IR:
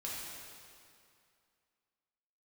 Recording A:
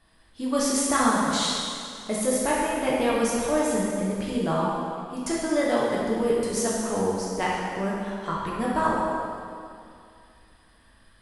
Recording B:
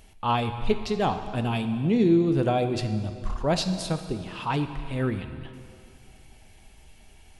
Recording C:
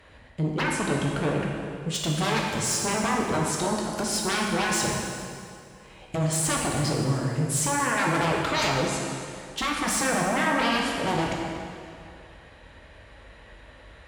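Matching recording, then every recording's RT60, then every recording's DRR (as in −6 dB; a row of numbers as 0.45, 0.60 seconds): A; 2.4, 2.4, 2.4 seconds; −6.5, 8.0, −2.0 decibels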